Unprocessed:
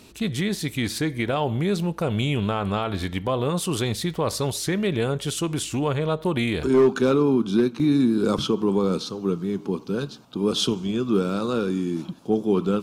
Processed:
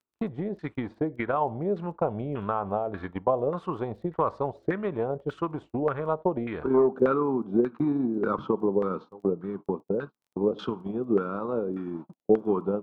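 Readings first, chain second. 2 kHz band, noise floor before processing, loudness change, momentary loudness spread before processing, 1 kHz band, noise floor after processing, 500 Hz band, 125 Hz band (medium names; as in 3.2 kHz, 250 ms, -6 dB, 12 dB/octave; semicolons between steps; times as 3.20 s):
-8.0 dB, -43 dBFS, -4.5 dB, 7 LU, 0.0 dB, -77 dBFS, -2.5 dB, -9.5 dB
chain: gate -29 dBFS, range -38 dB; bass shelf 220 Hz -7.5 dB; transient shaper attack +7 dB, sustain -1 dB; LFO low-pass saw down 1.7 Hz 530–1500 Hz; crackle 12 per s -49 dBFS; trim -6 dB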